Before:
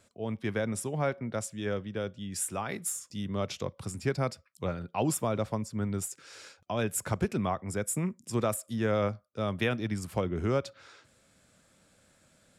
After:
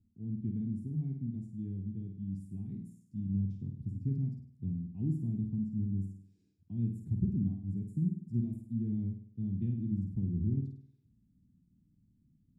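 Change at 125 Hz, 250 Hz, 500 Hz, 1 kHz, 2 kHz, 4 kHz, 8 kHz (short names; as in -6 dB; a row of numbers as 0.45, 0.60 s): +1.0 dB, -0.5 dB, -24.0 dB, under -40 dB, under -40 dB, under -35 dB, under -35 dB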